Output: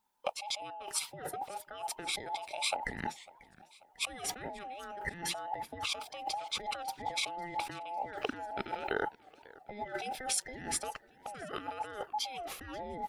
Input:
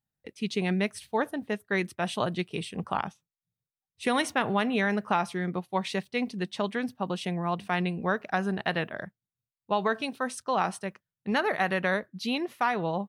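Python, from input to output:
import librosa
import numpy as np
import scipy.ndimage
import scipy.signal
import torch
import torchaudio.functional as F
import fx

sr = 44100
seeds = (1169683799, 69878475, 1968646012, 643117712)

y = fx.band_invert(x, sr, width_hz=1000)
y = fx.peak_eq(y, sr, hz=1100.0, db=-13.0, octaves=0.26, at=(8.49, 10.74))
y = fx.over_compress(y, sr, threshold_db=-40.0, ratio=-1.0)
y = fx.echo_warbled(y, sr, ms=544, feedback_pct=52, rate_hz=2.8, cents=217, wet_db=-21.5)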